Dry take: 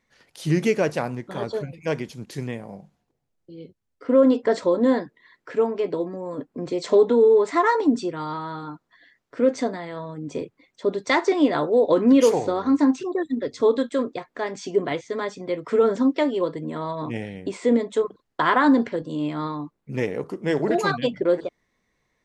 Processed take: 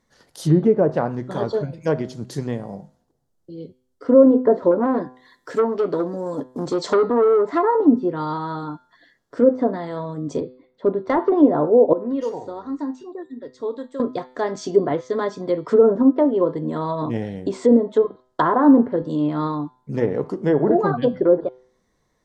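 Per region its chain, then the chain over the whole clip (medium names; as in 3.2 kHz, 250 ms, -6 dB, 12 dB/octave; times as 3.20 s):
4.71–7.63 s: treble shelf 5.4 kHz +11 dB + short-mantissa float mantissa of 4-bit + transformer saturation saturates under 1.4 kHz
10.40–11.32 s: distance through air 470 m + hard clipper -16 dBFS
11.93–14.00 s: tone controls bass -2 dB, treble -6 dB + feedback comb 930 Hz, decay 0.21 s, mix 80%
whole clip: low-pass that closes with the level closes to 880 Hz, closed at -17 dBFS; peaking EQ 2.4 kHz -13 dB 0.75 oct; de-hum 127.1 Hz, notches 37; trim +5.5 dB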